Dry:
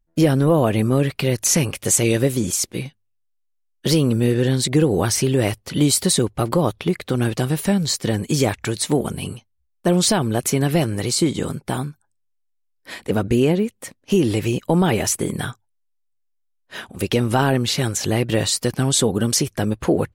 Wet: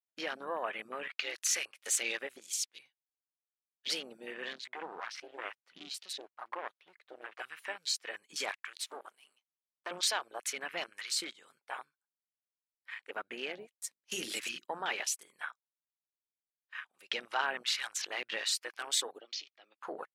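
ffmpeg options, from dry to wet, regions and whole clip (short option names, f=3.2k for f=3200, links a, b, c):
-filter_complex "[0:a]asettb=1/sr,asplit=3[a][b][c];[a]atrim=end=4.534[d];[b]atrim=start=4.53:end=7.39,asetpts=PTS-STARTPTS,afade=t=in:d=0.004:c=qsin,afade=t=out:st=2.856:d=0.004:c=qsin,highshelf=f=3.4k:g=-12,aeval=exprs='clip(val(0),-1,0.0531)':c=same,highpass=140[e];[c]atrim=start=7.386[f];[d][e]acrossfade=d=0.004:c1=hsin:c2=qsin[g];[g][f]acrossfade=d=0.004:c1=qsin:c2=hsin,asettb=1/sr,asplit=3[h][i][j];[h]atrim=end=8.514[k];[i]atrim=start=8.51:end=9.91,asetpts=PTS-STARTPTS,afade=t=in:d=0.004:c=qsin,afade=t=out:st=1.396:d=0.004:c=qsin,aeval=exprs='if(lt(val(0),0),0.251*val(0),val(0))':c=same,highpass=f=220:w=0.5412,highpass=f=220:w=1.3066[l];[j]atrim=start=9.906[m];[k][l]acrossfade=d=0.004:c1=hsin:c2=qsin[n];[n][m]acrossfade=d=0.004:c1=qsin:c2=hsin,asettb=1/sr,asplit=3[o][p][q];[o]atrim=end=13.754[r];[p]atrim=start=13.75:end=14.65,asetpts=PTS-STARTPTS,afade=t=in:d=0.004:c=qsin,afade=t=out:st=0.896:d=0.004:c=qsin,bass=f=250:g=11,treble=f=4k:g=11,bandreject=f=50:t=h:w=6,bandreject=f=100:t=h:w=6,bandreject=f=150:t=h:w=6,bandreject=f=200:t=h:w=6,bandreject=f=250:t=h:w=6,bandreject=f=300:t=h:w=6,bandreject=f=350:t=h:w=6,bandreject=f=400:t=h:w=6[s];[q]atrim=start=14.646[t];[r][s]acrossfade=d=0.004:c1=hsin:c2=qsin[u];[u][t]acrossfade=d=0.004:c1=qsin:c2=hsin,asettb=1/sr,asplit=3[v][w][x];[v]atrim=end=19.204[y];[w]atrim=start=19.2:end=19.81,asetpts=PTS-STARTPTS,afade=t=in:d=0.004:c=qsin,afade=t=out:st=0.606:d=0.004:c=qsin,highpass=f=290:w=0.5412,highpass=f=290:w=1.3066,equalizer=f=440:t=q:w=4:g=-6,equalizer=f=1k:t=q:w=4:g=-10,equalizer=f=1.7k:t=q:w=4:g=-7,lowpass=f=4.5k:w=0.5412,lowpass=f=4.5k:w=1.3066,bandreject=f=1.5k:w=11[z];[x]atrim=start=19.806[aa];[y][z]acrossfade=d=0.004:c1=hsin:c2=qsin[ab];[ab][aa]acrossfade=d=0.004:c1=qsin:c2=hsin,highpass=1.4k,afwtdn=0.0178,lowpass=f=2.5k:p=1,volume=-3.5dB"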